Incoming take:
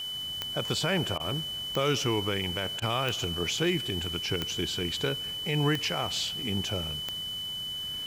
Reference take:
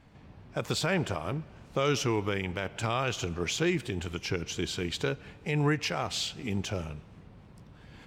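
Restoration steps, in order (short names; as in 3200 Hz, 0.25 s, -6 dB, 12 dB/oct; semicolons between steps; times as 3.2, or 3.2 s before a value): de-click; notch 3000 Hz, Q 30; interpolate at 1.18/2.8, 18 ms; noise print and reduce 16 dB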